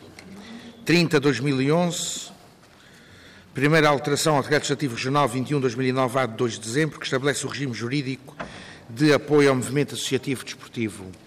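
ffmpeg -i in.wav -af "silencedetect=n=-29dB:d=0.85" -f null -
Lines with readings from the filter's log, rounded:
silence_start: 2.24
silence_end: 3.57 | silence_duration: 1.33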